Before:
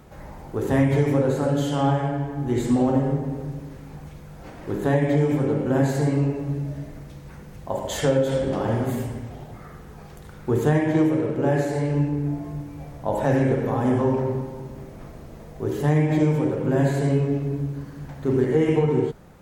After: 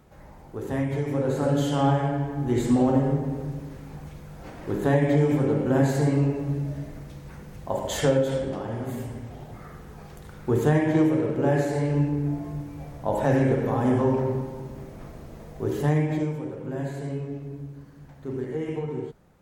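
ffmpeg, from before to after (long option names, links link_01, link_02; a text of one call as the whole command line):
ffmpeg -i in.wav -af "volume=7.5dB,afade=type=in:start_time=1.08:duration=0.43:silence=0.446684,afade=type=out:start_time=8.07:duration=0.62:silence=0.375837,afade=type=in:start_time=8.69:duration=0.91:silence=0.398107,afade=type=out:start_time=15.78:duration=0.59:silence=0.334965" out.wav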